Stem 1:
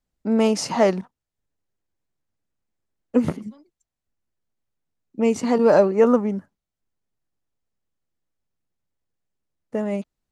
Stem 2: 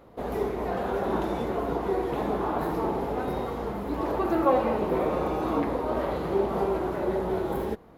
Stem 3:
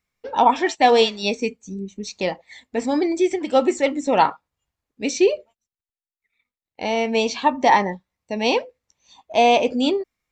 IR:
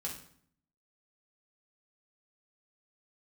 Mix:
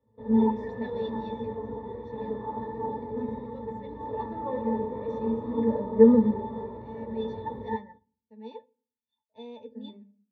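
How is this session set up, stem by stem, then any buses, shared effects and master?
−2.0 dB, 0.00 s, send −15.5 dB, low shelf with overshoot 150 Hz −8.5 dB, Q 3; automatic ducking −19 dB, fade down 0.65 s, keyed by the third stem
+2.5 dB, 0.00 s, send −13 dB, no processing
−12.5 dB, 0.00 s, send −19.5 dB, no processing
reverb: on, RT60 0.60 s, pre-delay 3 ms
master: resonances in every octave A, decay 0.11 s; multiband upward and downward expander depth 40%

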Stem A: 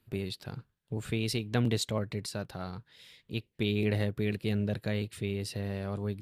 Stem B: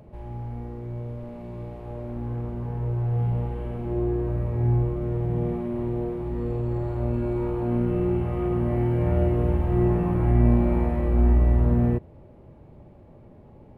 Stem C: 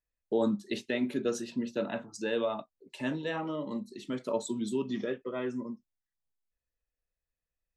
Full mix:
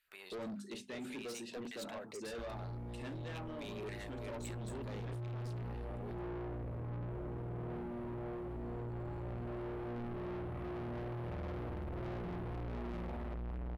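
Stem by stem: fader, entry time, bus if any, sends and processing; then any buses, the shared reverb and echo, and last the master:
−5.5 dB, 0.00 s, no send, auto-filter high-pass saw down 1.8 Hz 350–1,900 Hz
−1.5 dB, 2.25 s, no send, no processing
−2.5 dB, 0.00 s, no send, parametric band 8,900 Hz +7.5 dB 0.4 octaves; mains-hum notches 50/100/150/200/250 Hz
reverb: not used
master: soft clipping −34.5 dBFS, distortion −3 dB; brickwall limiter −40 dBFS, peak gain reduction 5.5 dB

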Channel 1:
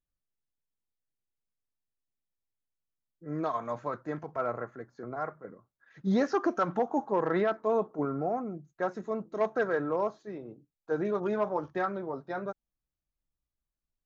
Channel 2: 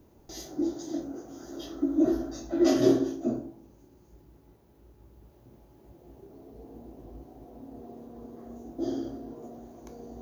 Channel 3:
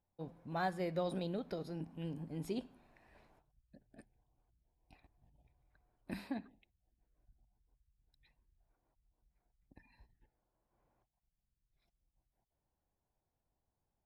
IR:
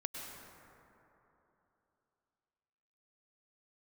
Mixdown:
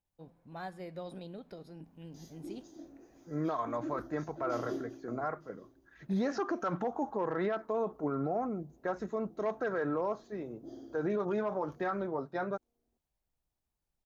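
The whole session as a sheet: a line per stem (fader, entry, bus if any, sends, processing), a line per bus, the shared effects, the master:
+0.5 dB, 0.05 s, no send, no echo send, no processing
−16.5 dB, 1.85 s, no send, echo send −23 dB, no processing
−6.0 dB, 0.00 s, no send, no echo send, no processing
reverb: not used
echo: single-tap delay 908 ms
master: brickwall limiter −24.5 dBFS, peak gain reduction 7.5 dB

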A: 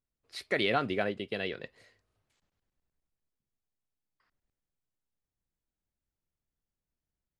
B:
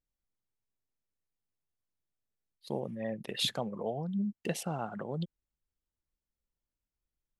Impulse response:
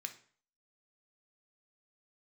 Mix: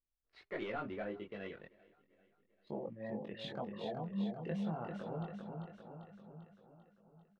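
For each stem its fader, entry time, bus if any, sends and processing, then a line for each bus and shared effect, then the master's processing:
−13.5 dB, 0.00 s, no send, echo send −24 dB, hum removal 136.5 Hz, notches 3; leveller curve on the samples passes 2
−3.5 dB, 0.00 s, no send, echo send −5 dB, no processing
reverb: not used
echo: repeating echo 394 ms, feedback 56%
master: multi-voice chorus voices 6, 0.29 Hz, delay 22 ms, depth 3.3 ms; low-pass filter 2,000 Hz 12 dB per octave

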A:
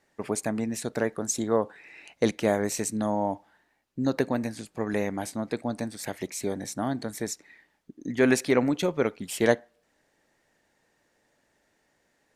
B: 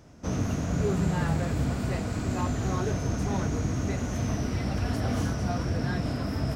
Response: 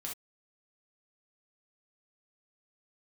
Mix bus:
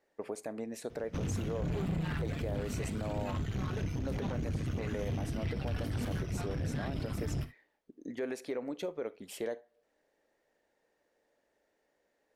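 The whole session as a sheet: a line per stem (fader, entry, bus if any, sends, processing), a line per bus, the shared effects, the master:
−10.5 dB, 0.00 s, send −14 dB, octave-band graphic EQ 125/500/8,000 Hz −8/+9/−4 dB; downward compressor 2.5 to 1, threshold −25 dBFS, peak gain reduction 11 dB
+2.5 dB, 0.90 s, send −5 dB, reverb reduction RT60 1.8 s; drawn EQ curve 170 Hz 0 dB, 620 Hz −13 dB, 3,100 Hz +1 dB, 6,700 Hz −14 dB, 12,000 Hz −4 dB; tube saturation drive 34 dB, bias 0.7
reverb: on, pre-delay 3 ms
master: brickwall limiter −27 dBFS, peak gain reduction 8 dB

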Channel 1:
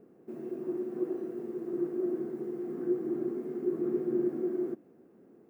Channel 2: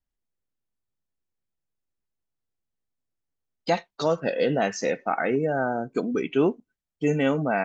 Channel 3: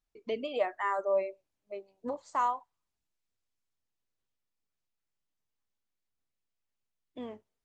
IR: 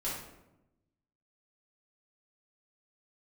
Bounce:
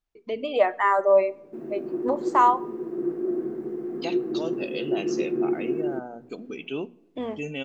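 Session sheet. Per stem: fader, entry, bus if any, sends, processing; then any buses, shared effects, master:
−4.5 dB, 1.25 s, no send, no processing
−19.5 dB, 0.35 s, send −24 dB, high shelf with overshoot 2,200 Hz +7 dB, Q 3
+1.5 dB, 0.00 s, send −23 dB, no processing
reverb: on, RT60 0.95 s, pre-delay 3 ms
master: high-shelf EQ 6,100 Hz −9 dB; mains-hum notches 60/120/180/240 Hz; automatic gain control gain up to 9 dB

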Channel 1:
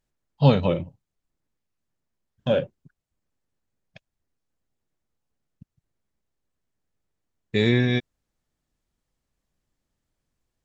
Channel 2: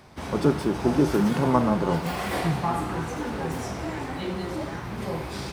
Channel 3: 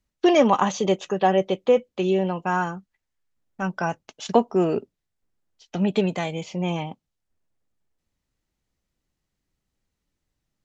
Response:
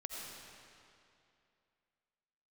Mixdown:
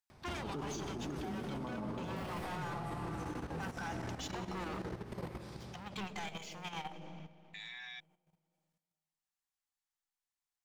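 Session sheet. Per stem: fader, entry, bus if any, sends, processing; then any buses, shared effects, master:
−7.0 dB, 0.00 s, bus A, no send, high-shelf EQ 4,900 Hz +6.5 dB
−5.0 dB, 0.10 s, no bus, send −3.5 dB, low-shelf EQ 130 Hz +7 dB; automatic ducking −15 dB, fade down 1.60 s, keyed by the third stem
−9.0 dB, 0.00 s, bus A, send −11 dB, brickwall limiter −14.5 dBFS, peak gain reduction 10 dB; leveller curve on the samples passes 3
bus A: 0.0 dB, linear-phase brick-wall high-pass 710 Hz; brickwall limiter −29.5 dBFS, peak gain reduction 10.5 dB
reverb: on, RT60 2.6 s, pre-delay 45 ms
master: output level in coarse steps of 12 dB; brickwall limiter −32.5 dBFS, peak gain reduction 16.5 dB

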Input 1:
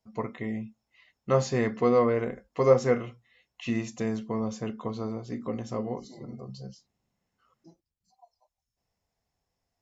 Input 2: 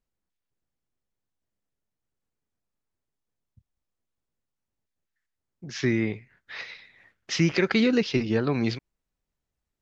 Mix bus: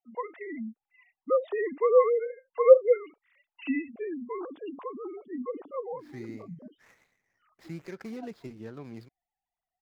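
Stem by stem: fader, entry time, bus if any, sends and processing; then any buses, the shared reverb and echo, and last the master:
+1.0 dB, 0.00 s, no send, three sine waves on the formant tracks; gate on every frequency bin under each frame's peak −25 dB strong
−17.5 dB, 0.30 s, no send, running median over 15 samples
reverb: not used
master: no processing

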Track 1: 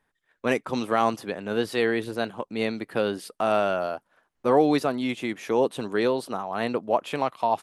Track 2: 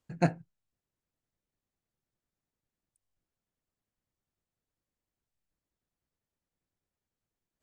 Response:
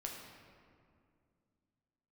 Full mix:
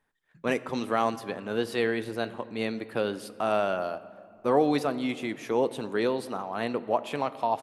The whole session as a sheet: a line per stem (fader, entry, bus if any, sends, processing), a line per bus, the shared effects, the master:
−5.0 dB, 0.00 s, send −8.5 dB, no processing
−8.0 dB, 0.25 s, no send, flat-topped bell 580 Hz −13.5 dB 1.3 octaves; automatic ducking −10 dB, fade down 0.20 s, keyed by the first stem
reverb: on, RT60 2.3 s, pre-delay 7 ms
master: no processing

